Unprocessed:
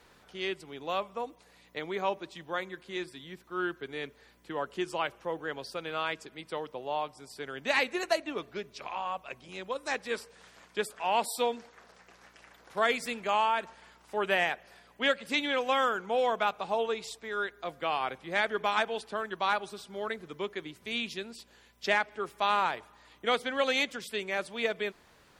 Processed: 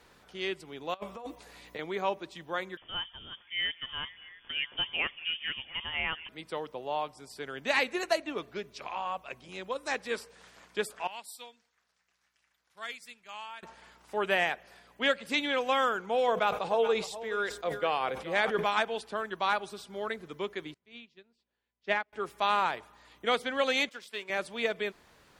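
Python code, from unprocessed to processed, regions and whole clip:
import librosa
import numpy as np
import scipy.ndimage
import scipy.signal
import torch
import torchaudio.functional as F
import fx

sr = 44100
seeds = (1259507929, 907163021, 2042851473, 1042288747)

y = fx.chain(x, sr, fx.doubler(ms=14.0, db=-8.5),
    fx.over_compress(threshold_db=-39.0, ratio=-0.5), at=(0.94, 1.79))
y = fx.chain(y, sr, fx.echo_stepped(ms=229, hz=640.0, octaves=0.7, feedback_pct=70, wet_db=-11),
    fx.freq_invert(carrier_hz=3400), at=(2.77, 6.29))
y = fx.chain(y, sr, fx.tone_stack(knobs='5-5-5'),
    fx.upward_expand(threshold_db=-53.0, expansion=1.5), at=(11.07, 13.63))
y = fx.chain(y, sr, fx.peak_eq(hz=500.0, db=8.5, octaves=0.3),
    fx.echo_single(ms=425, db=-14.0),
    fx.sustainer(db_per_s=110.0), at=(16.28, 18.64))
y = fx.chain(y, sr, fx.air_absorb(metres=120.0),
    fx.upward_expand(threshold_db=-41.0, expansion=2.5), at=(20.74, 22.13))
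y = fx.chain(y, sr, fx.law_mismatch(coded='A'),
    fx.highpass(hz=600.0, slope=6),
    fx.high_shelf(hz=7000.0, db=-7.5), at=(23.89, 24.3))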